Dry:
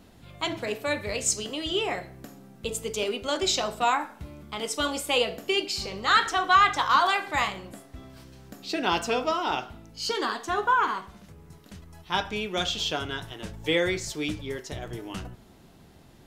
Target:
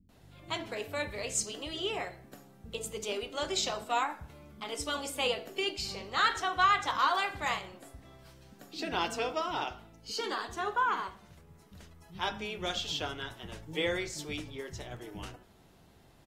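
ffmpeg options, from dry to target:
ffmpeg -i in.wav -filter_complex "[0:a]acrossover=split=240[link_01][link_02];[link_02]adelay=90[link_03];[link_01][link_03]amix=inputs=2:normalize=0,volume=-6.5dB" -ar 48000 -c:a aac -b:a 48k out.aac

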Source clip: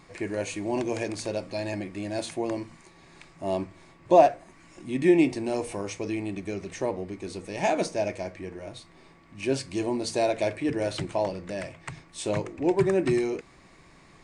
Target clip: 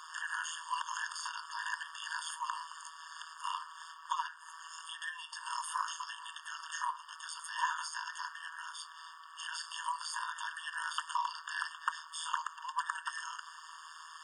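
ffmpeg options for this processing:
ffmpeg -i in.wav -filter_complex "[0:a]acompressor=threshold=-27dB:ratio=10,tremolo=f=160:d=0.947,acrossover=split=140|1700[link_01][link_02][link_03];[link_03]alimiter=level_in=18.5dB:limit=-24dB:level=0:latency=1:release=63,volume=-18.5dB[link_04];[link_01][link_02][link_04]amix=inputs=3:normalize=0,afftfilt=real='re*eq(mod(floor(b*sr/1024/910),2),1)':imag='im*eq(mod(floor(b*sr/1024/910),2),1)':win_size=1024:overlap=0.75,volume=15dB" out.wav

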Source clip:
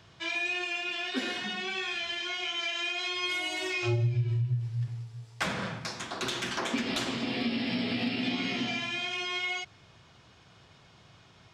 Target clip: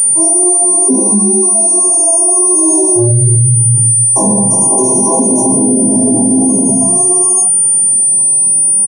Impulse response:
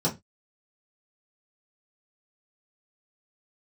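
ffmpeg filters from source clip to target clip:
-filter_complex "[0:a]asplit=2[link_01][link_02];[link_02]adelay=15,volume=-10.5dB[link_03];[link_01][link_03]amix=inputs=2:normalize=0,aecho=1:1:19|34:0.596|0.668[link_04];[1:a]atrim=start_sample=2205,afade=type=out:start_time=0.13:duration=0.01,atrim=end_sample=6174,asetrate=34839,aresample=44100[link_05];[link_04][link_05]afir=irnorm=-1:irlink=0,aeval=exprs='val(0)+0.2*sin(2*PI*9300*n/s)':channel_layout=same,afftfilt=real='re*(1-between(b*sr/4096,1100,5400))':imag='im*(1-between(b*sr/4096,1100,5400))':win_size=4096:overlap=0.75,atempo=1.3,highpass=frequency=180:width=0.5412,highpass=frequency=180:width=1.3066,alimiter=level_in=8.5dB:limit=-1dB:release=50:level=0:latency=1,volume=-1dB"

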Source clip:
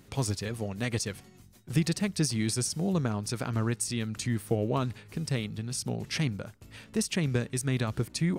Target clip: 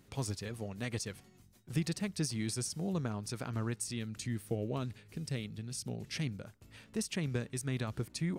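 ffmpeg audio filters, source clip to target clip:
ffmpeg -i in.wav -filter_complex "[0:a]asettb=1/sr,asplit=3[link_01][link_02][link_03];[link_01]atrim=end=3.994[link_04];[link_02]atrim=start=3.99:end=6.45,asetpts=PTS-STARTPTS,afade=type=in:duration=0.004:curve=qsin,afade=type=out:start_time=2.456:duration=0.004:curve=qsin,equalizer=frequency=1000:width=1.3:gain=-5.5[link_05];[link_03]atrim=start=6.446[link_06];[link_04][link_05]acrossfade=duration=0.004:curve1=hsin:curve2=qsin[link_07];[link_07][link_06]acrossfade=duration=0.004:curve1=qsin:curve2=hsin,volume=-7dB" out.wav

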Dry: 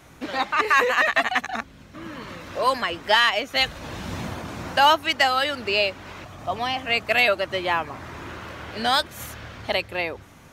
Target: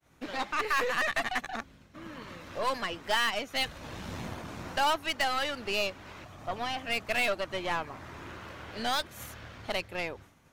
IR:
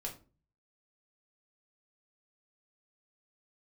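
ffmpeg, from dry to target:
-af "agate=range=-33dB:threshold=-42dB:ratio=3:detection=peak,aeval=exprs='0.398*(cos(1*acos(clip(val(0)/0.398,-1,1)))-cos(1*PI/2))+0.0501*(cos(6*acos(clip(val(0)/0.398,-1,1)))-cos(6*PI/2))':channel_layout=same,asoftclip=type=tanh:threshold=-12.5dB,volume=-7.5dB"

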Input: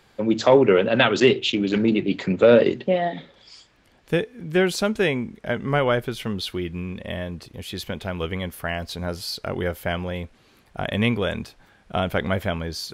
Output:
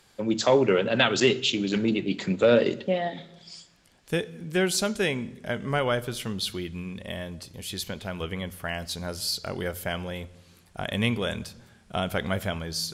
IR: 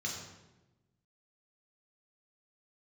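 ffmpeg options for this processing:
-filter_complex "[0:a]asettb=1/sr,asplit=3[link_01][link_02][link_03];[link_01]atrim=end=7.844[link_04];[link_02]atrim=start=7.84:end=8.68,asetpts=PTS-STARTPTS,afade=type=in:duration=0.004:curve=qsin,afade=type=out:start_time=0.836:duration=0.004:curve=qsin,acrossover=split=3500[link_05][link_06];[link_06]acompressor=threshold=-47dB:ratio=4:attack=1:release=60[link_07];[link_05][link_07]amix=inputs=2:normalize=0[link_08];[link_03]atrim=start=8.676[link_09];[link_04][link_08]acrossfade=duration=0.004:curve1=hsin:curve2=qsin[link_10];[link_10][link_09]acrossfade=duration=0.004:curve1=qsin:curve2=hsin,equalizer=frequency=8800:width_type=o:width=2:gain=11.5,asplit=2[link_11][link_12];[1:a]atrim=start_sample=2205[link_13];[link_12][link_13]afir=irnorm=-1:irlink=0,volume=-18.5dB[link_14];[link_11][link_14]amix=inputs=2:normalize=0,volume=-5dB"

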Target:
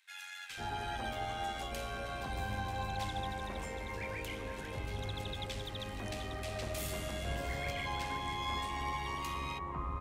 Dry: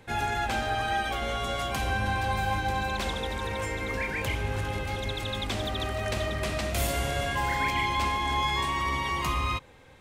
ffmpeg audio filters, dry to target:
ffmpeg -i in.wav -filter_complex "[0:a]tremolo=f=91:d=0.462,acrossover=split=1600[link_01][link_02];[link_01]adelay=500[link_03];[link_03][link_02]amix=inputs=2:normalize=0,volume=-7dB" out.wav

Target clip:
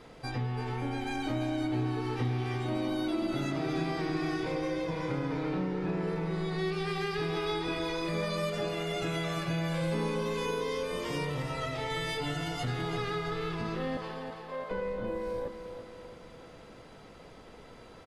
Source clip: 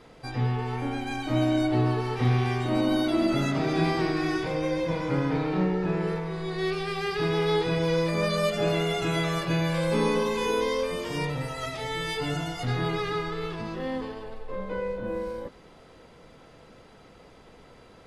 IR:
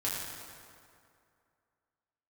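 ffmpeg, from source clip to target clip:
-filter_complex "[0:a]asettb=1/sr,asplit=3[link_01][link_02][link_03];[link_01]atrim=end=7.364[link_04];[link_02]atrim=start=7.36:end=8.09,asetpts=PTS-STARTPTS,afade=type=in:duration=0.004:curve=qsin,afade=type=out:start_time=0.726:duration=0.004:curve=qsin,aecho=1:1:3.2:0.83,atrim=end_sample=32193[link_05];[link_03]atrim=start=8.086[link_06];[link_04][link_05]acrossfade=duration=0.004:curve1=hsin:curve2=qsin[link_07];[link_07][link_06]acrossfade=duration=0.004:curve1=qsin:curve2=hsin,asettb=1/sr,asplit=3[link_08][link_09][link_10];[link_08]atrim=end=11.424[link_11];[link_09]atrim=start=11.42:end=11.9,asetpts=PTS-STARTPTS,afade=type=in:duration=0.004:curve=qsin,afade=type=out:start_time=0.476:duration=0.004:curve=qsin,highshelf=frequency=6400:gain=-11.5[link_12];[link_10]atrim=start=11.896[link_13];[link_11][link_12]acrossfade=duration=0.004:curve1=hsin:curve2=qsin[link_14];[link_14][link_13]acrossfade=duration=0.004:curve1=qsin:curve2=hsin,asettb=1/sr,asplit=3[link_15][link_16][link_17];[link_15]atrim=end=13.974[link_18];[link_16]atrim=start=13.97:end=14.71,asetpts=PTS-STARTPTS,afade=type=in:duration=0.004:curve=qsin,afade=type=out:start_time=0.736:duration=0.004:curve=qsin,highpass=frequency=520:width=0.5412,highpass=frequency=520:width=1.3066[link_19];[link_17]atrim=start=14.706[link_20];[link_18][link_19]acrossfade=duration=0.004:curve1=hsin:curve2=qsin[link_21];[link_21][link_20]acrossfade=duration=0.004:curve1=qsin:curve2=hsin,acompressor=threshold=-31dB:ratio=4,aecho=1:1:335|670|1005|1340|1675:0.355|0.17|0.0817|0.0392|0.0188"

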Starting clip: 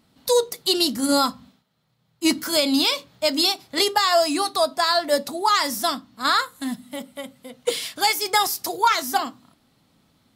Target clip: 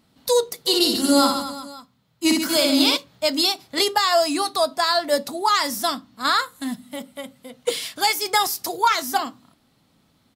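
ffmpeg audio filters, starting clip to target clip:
ffmpeg -i in.wav -filter_complex "[0:a]asplit=3[link_01][link_02][link_03];[link_01]afade=type=out:start_time=0.65:duration=0.02[link_04];[link_02]aecho=1:1:60|138|239.4|371.2|542.6:0.631|0.398|0.251|0.158|0.1,afade=type=in:start_time=0.65:duration=0.02,afade=type=out:start_time=2.96:duration=0.02[link_05];[link_03]afade=type=in:start_time=2.96:duration=0.02[link_06];[link_04][link_05][link_06]amix=inputs=3:normalize=0" out.wav

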